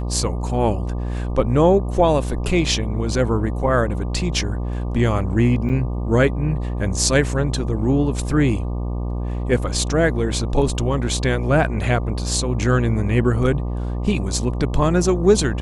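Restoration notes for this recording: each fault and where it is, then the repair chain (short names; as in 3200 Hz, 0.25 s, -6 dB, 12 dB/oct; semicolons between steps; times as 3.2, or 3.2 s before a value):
buzz 60 Hz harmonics 20 -24 dBFS
5.69–5.7 gap 5.8 ms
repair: de-hum 60 Hz, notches 20; interpolate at 5.69, 5.8 ms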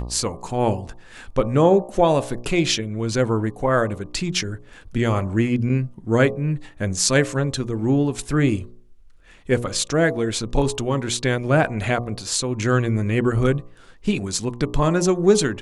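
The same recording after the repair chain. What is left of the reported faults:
none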